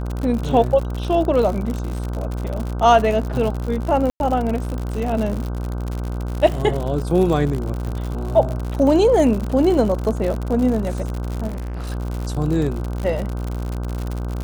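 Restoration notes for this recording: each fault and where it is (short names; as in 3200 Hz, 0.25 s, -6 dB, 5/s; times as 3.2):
buzz 60 Hz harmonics 26 -25 dBFS
crackle 82/s -24 dBFS
4.1–4.2 gap 0.101 s
11.47–11.91 clipped -25 dBFS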